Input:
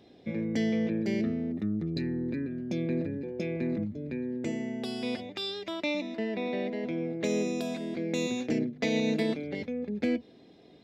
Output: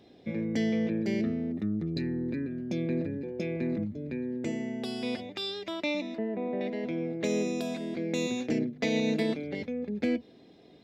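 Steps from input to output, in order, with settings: 6.18–6.61 s: low-pass 1.2 kHz 12 dB/octave

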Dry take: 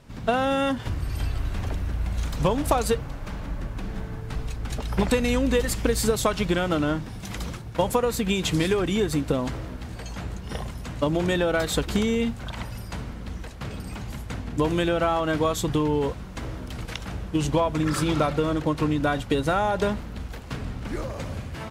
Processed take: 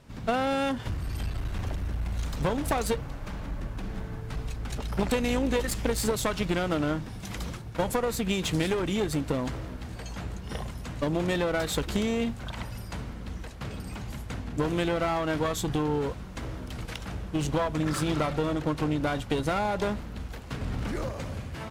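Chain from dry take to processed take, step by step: one-sided clip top -26 dBFS; 20.61–21.09 s: level flattener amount 100%; trim -2.5 dB

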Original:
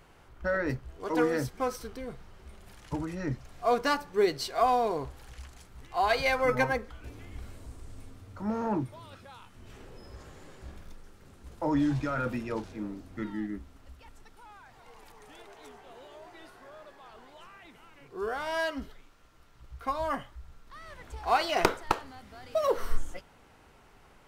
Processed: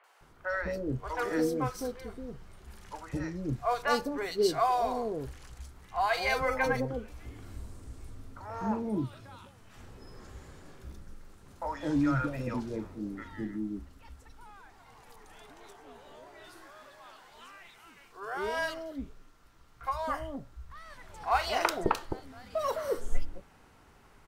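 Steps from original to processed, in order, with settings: 16.40–18.16 s: tilt shelf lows -5.5 dB, about 920 Hz; three bands offset in time mids, highs, lows 40/210 ms, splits 560/2800 Hz

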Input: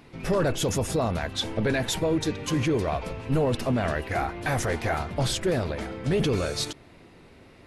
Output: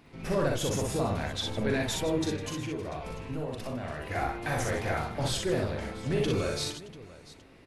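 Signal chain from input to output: 2.30–4.01 s: compression, threshold -29 dBFS, peak gain reduction 8.5 dB; on a send: multi-tap echo 41/60/155/691 ms -5.5/-3/-13.5/-17 dB; on the sum: trim -6 dB

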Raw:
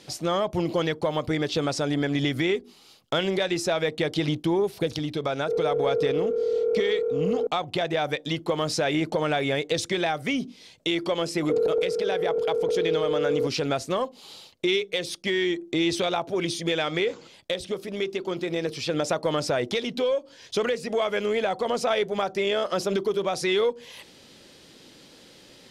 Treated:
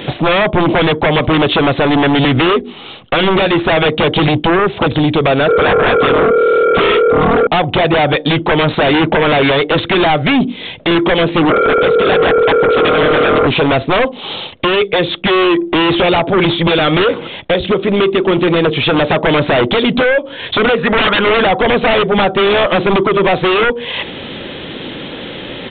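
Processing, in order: 20.78–21.42 s: high-order bell 1.3 kHz +12.5 dB 1.2 oct; in parallel at +2.5 dB: compression, threshold -38 dBFS, peak gain reduction 20 dB; on the sum: sine folder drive 15 dB, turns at -7.5 dBFS; resampled via 8 kHz

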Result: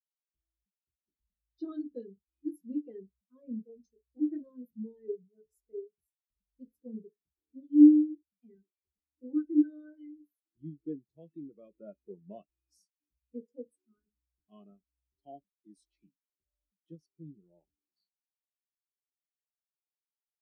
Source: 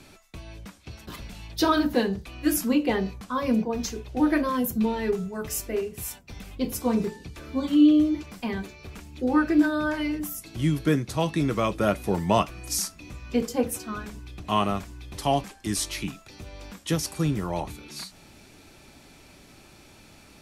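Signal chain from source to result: fifteen-band graphic EQ 100 Hz -10 dB, 400 Hz +4 dB, 1 kHz -9 dB, 4 kHz +4 dB, 10 kHz +3 dB; spectral contrast expander 2.5:1

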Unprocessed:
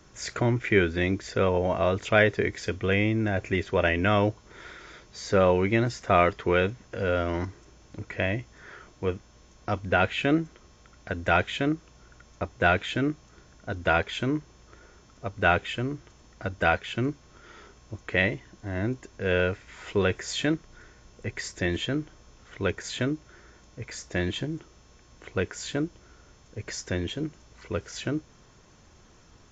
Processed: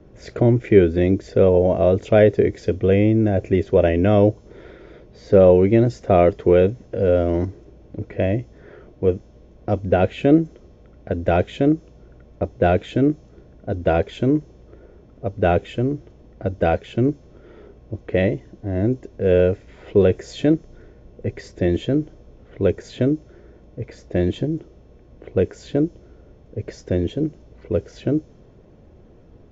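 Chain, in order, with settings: level-controlled noise filter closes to 2.7 kHz, open at -22 dBFS; resonant low shelf 780 Hz +11.5 dB, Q 1.5; trim -3.5 dB

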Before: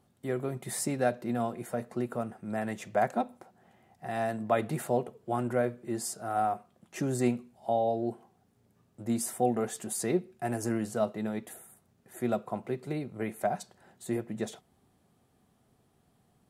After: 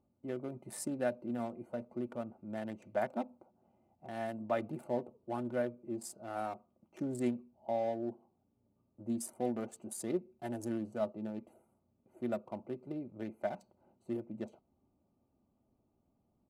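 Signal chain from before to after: local Wiener filter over 25 samples; comb 3.4 ms, depth 45%; trim -7 dB

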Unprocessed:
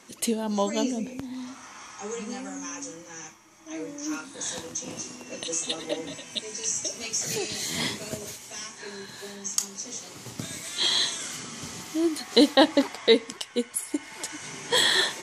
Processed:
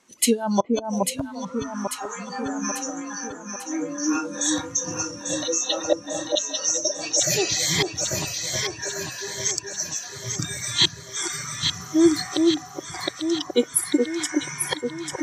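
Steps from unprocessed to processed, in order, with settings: 5.24–7.18 s: cabinet simulation 240–6400 Hz, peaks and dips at 610 Hz +5 dB, 2.3 kHz -8 dB, 3.4 kHz -4 dB; inverted gate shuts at -14 dBFS, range -39 dB; sine folder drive 5 dB, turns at -2 dBFS; spectral noise reduction 18 dB; echo whose repeats swap between lows and highs 422 ms, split 1.1 kHz, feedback 74%, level -3 dB

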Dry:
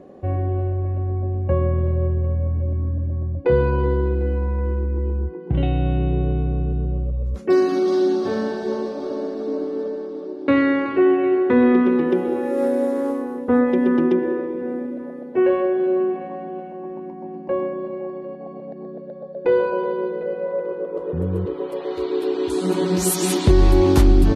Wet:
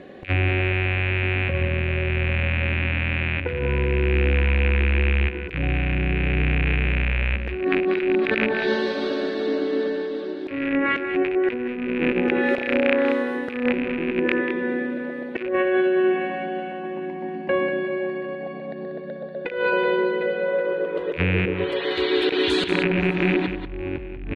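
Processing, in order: rattle on loud lows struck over -25 dBFS, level -7 dBFS; saturation -4 dBFS, distortion -24 dB; high-order bell 2.5 kHz +15.5 dB; low-pass that closes with the level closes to 710 Hz, closed at -5 dBFS; compressor with a negative ratio -20 dBFS, ratio -0.5; delay 189 ms -9 dB; on a send at -21 dB: reverberation RT60 0.95 s, pre-delay 68 ms; on the sum: trim -1 dB

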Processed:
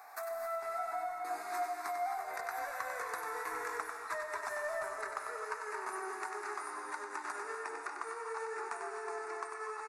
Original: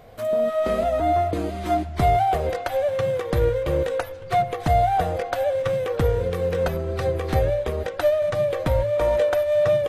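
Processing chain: pitch bend over the whole clip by -4.5 st starting unshifted; Doppler pass-by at 3.70 s, 24 m/s, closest 29 m; high-pass 590 Hz 24 dB/octave; in parallel at -5 dB: saturation -28.5 dBFS, distortion -9 dB; on the sum: peaking EQ 3.1 kHz -5 dB 0.34 oct; static phaser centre 1.3 kHz, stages 4; compression 6:1, threshold -49 dBFS, peak gain reduction 21 dB; on a send: delay 96 ms -7 dB; on the sum: gated-style reverb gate 290 ms rising, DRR 4 dB; trim +10 dB

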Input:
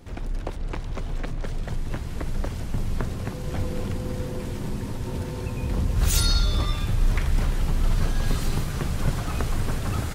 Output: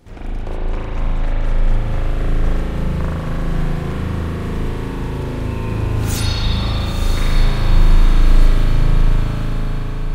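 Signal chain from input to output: fade out at the end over 2.40 s; echo that smears into a reverb 990 ms, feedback 41%, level -7 dB; spring tank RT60 3.8 s, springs 37 ms, chirp 35 ms, DRR -9 dB; trim -1.5 dB

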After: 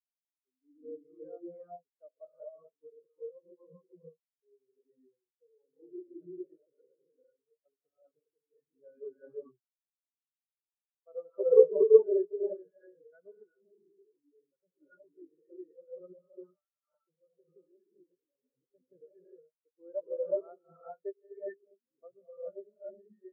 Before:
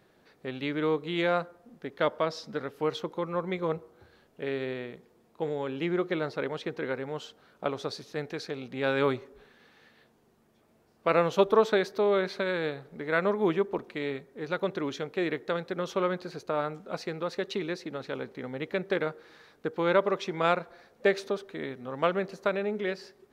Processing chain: 16.14–16.72 s: high-pass 930 Hz 12 dB/octave; gated-style reverb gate 450 ms rising, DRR -4.5 dB; 13.43–14.82 s: overload inside the chain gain 26.5 dB; spectral contrast expander 4:1; trim -1 dB

